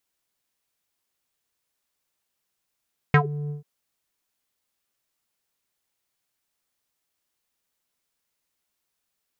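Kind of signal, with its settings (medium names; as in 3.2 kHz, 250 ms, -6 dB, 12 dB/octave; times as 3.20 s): synth note square D3 12 dB/octave, low-pass 300 Hz, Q 5.4, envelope 3 oct, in 0.13 s, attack 1.4 ms, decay 0.08 s, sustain -18 dB, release 0.13 s, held 0.36 s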